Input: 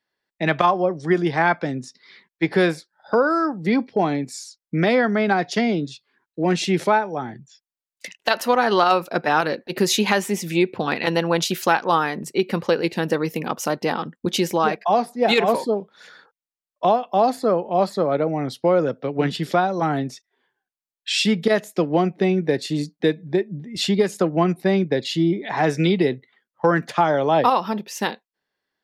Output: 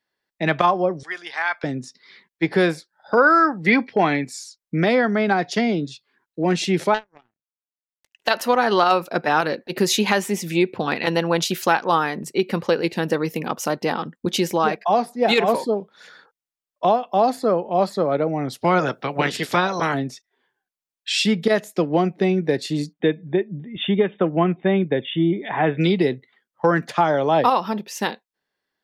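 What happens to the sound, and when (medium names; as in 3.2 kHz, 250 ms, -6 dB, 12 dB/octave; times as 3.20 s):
1.03–1.64 s: high-pass 1.3 kHz
3.17–4.28 s: peaking EQ 2 kHz +12 dB 1.5 oct
6.94–8.15 s: power-law waveshaper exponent 3
18.52–19.93 s: spectral peaks clipped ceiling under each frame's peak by 19 dB
22.93–25.81 s: brick-wall FIR low-pass 3.7 kHz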